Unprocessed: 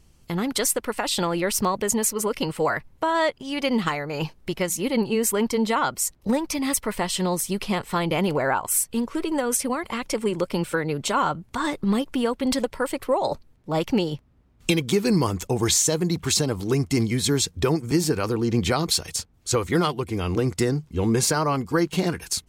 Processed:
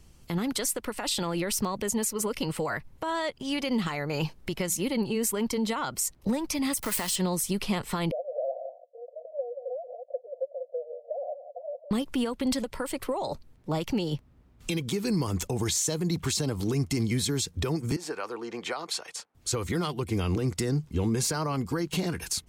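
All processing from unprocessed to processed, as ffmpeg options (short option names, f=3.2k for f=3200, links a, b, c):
-filter_complex "[0:a]asettb=1/sr,asplit=3[a][b][c];[a]atrim=end=6.754[d];[b]atrim=start=6.75:end=7.16,asetpts=PTS-STARTPTS,afade=t=in:d=0.004:c=qsin,afade=t=out:st=0.406:d=0.004:c=qsin,aeval=exprs='val(0)+0.5*0.0316*sgn(val(0))':c=same,highshelf=f=5.9k:g=11.5,acrossover=split=84|750[e][f][g];[e]acompressor=threshold=-46dB:ratio=4[h];[f]acompressor=threshold=-30dB:ratio=4[i];[g]acompressor=threshold=-20dB:ratio=4[j];[h][i][j]amix=inputs=3:normalize=0[k];[c]atrim=start=7.156[l];[d][k]acrossfade=d=0.004:c1=hsin:c2=qsin[m];[m][l]acrossfade=d=0.004:c1=qsin:c2=hsin,asettb=1/sr,asplit=3[n][o][p];[n]atrim=end=8.114[q];[o]atrim=start=8.11:end=11.91,asetpts=PTS-STARTPTS,afade=t=in:d=0.004:c=qsin,afade=t=out:st=3.796:d=0.004:c=qsin,asuperpass=centerf=590:order=12:qfactor=2.7,aecho=1:1:179:0.251,atrim=end_sample=167580[r];[p]atrim=start=11.906[s];[q][r]acrossfade=d=0.004:c1=hsin:c2=qsin[t];[t][s]acrossfade=d=0.004:c1=qsin:c2=hsin,asettb=1/sr,asplit=3[u][v][w];[u]atrim=end=17.964[x];[v]atrim=start=17.96:end=19.35,asetpts=PTS-STARTPTS,afade=t=in:d=0.004:c=qsin,afade=t=out:st=1.386:d=0.004:c=qsin,highpass=690,lowpass=6.7k,equalizer=f=4.9k:w=0.53:g=-10.5[y];[w]atrim=start=19.346[z];[x][y]acrossfade=d=0.004:c1=hsin:c2=qsin[aa];[aa][z]acrossfade=d=0.004:c1=qsin:c2=hsin,alimiter=limit=-19.5dB:level=0:latency=1:release=126,acrossover=split=250|3000[ab][ac][ad];[ac]acompressor=threshold=-38dB:ratio=1.5[ae];[ab][ae][ad]amix=inputs=3:normalize=0,volume=1.5dB"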